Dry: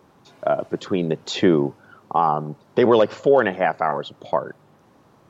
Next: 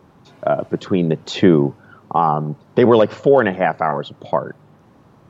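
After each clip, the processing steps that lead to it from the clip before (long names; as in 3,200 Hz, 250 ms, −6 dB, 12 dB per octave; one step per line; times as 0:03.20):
bass and treble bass +6 dB, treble −4 dB
level +2.5 dB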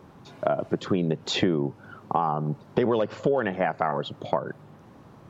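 downward compressor 5 to 1, threshold −21 dBFS, peak gain reduction 13 dB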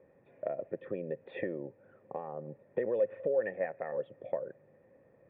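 formant resonators in series e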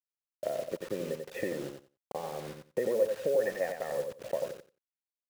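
bit reduction 8 bits
on a send: repeating echo 90 ms, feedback 16%, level −6 dB
on the sum: level +1.5 dB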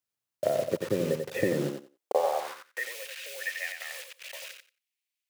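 high-pass filter sweep 100 Hz → 2,400 Hz, 0:01.44–0:02.94
level +6.5 dB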